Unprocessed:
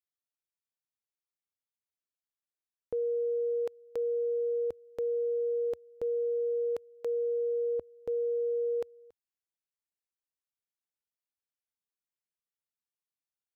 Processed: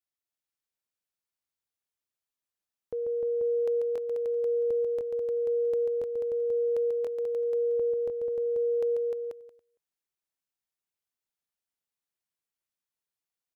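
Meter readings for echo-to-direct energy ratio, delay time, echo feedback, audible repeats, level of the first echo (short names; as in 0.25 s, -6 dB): 0.5 dB, 0.14 s, no steady repeat, 4, -5.5 dB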